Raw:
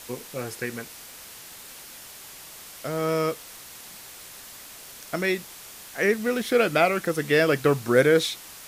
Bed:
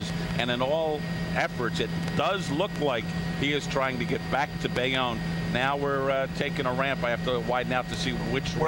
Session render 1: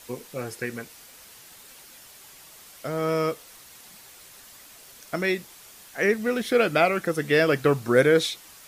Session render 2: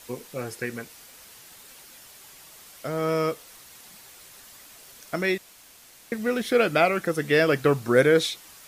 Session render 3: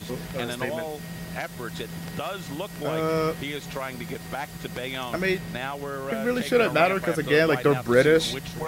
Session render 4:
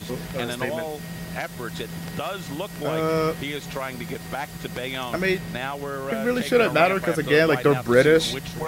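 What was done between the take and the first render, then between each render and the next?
denoiser 6 dB, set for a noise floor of -44 dBFS
5.38–6.12 room tone
add bed -6 dB
gain +2 dB

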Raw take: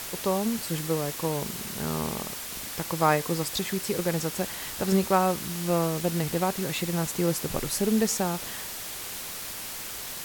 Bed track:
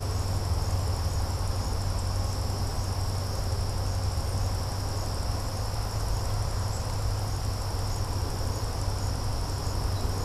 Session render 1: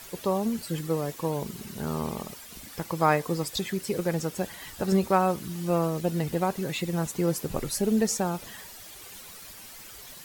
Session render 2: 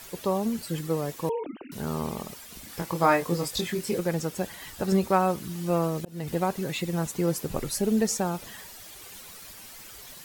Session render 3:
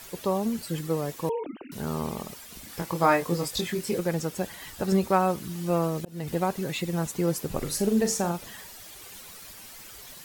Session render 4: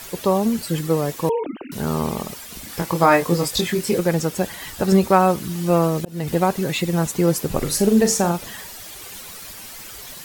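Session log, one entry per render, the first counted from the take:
denoiser 11 dB, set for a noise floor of -37 dBFS
1.29–1.72 sine-wave speech; 2.67–3.99 doubler 23 ms -4 dB; 5.69–6.28 auto swell 0.314 s
7.57–8.32 flutter echo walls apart 6.9 m, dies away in 0.28 s
gain +8 dB; limiter -3 dBFS, peak gain reduction 2.5 dB

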